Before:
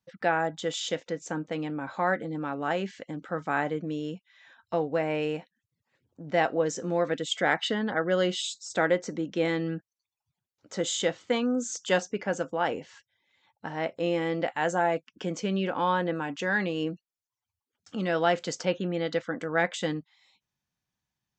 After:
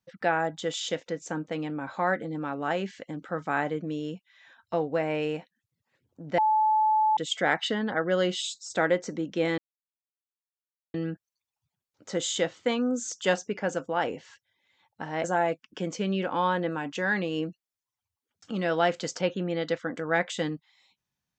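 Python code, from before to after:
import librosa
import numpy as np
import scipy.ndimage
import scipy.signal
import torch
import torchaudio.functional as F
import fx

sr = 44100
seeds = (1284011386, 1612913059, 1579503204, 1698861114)

y = fx.edit(x, sr, fx.bleep(start_s=6.38, length_s=0.79, hz=865.0, db=-19.5),
    fx.insert_silence(at_s=9.58, length_s=1.36),
    fx.cut(start_s=13.88, length_s=0.8), tone=tone)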